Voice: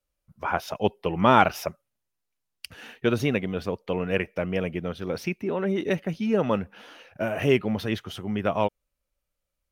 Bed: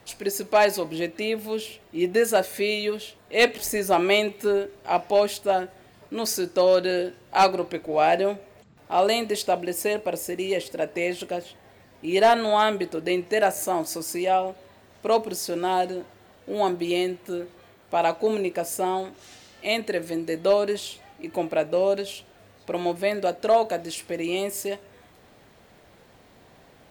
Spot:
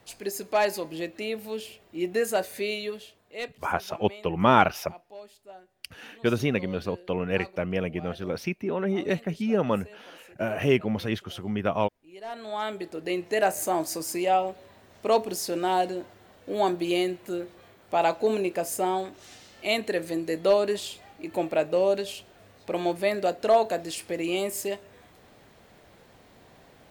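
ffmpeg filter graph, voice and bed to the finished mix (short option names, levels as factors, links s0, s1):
-filter_complex "[0:a]adelay=3200,volume=0.891[s0];[1:a]volume=8.41,afade=t=out:st=2.72:d=0.86:silence=0.105925,afade=t=in:st=12.22:d=1.42:silence=0.0668344[s1];[s0][s1]amix=inputs=2:normalize=0"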